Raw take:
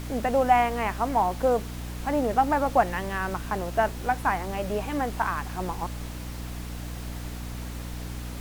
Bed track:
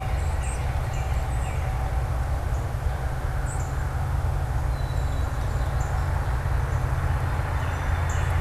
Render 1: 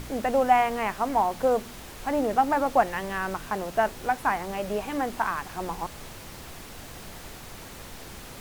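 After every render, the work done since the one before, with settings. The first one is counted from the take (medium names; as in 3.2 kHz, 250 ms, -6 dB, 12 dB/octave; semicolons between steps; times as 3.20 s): de-hum 60 Hz, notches 5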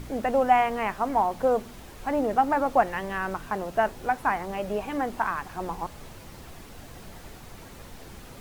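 noise reduction 6 dB, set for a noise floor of -43 dBFS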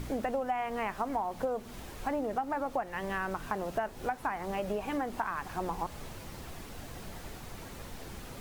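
compression 10:1, threshold -29 dBFS, peak gain reduction 15 dB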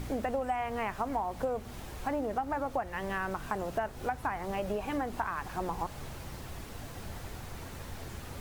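add bed track -23 dB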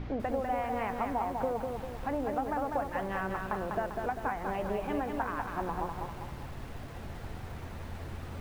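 distance through air 270 m; bit-crushed delay 198 ms, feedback 55%, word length 9-bit, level -4 dB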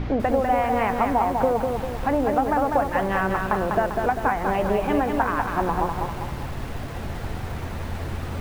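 trim +11 dB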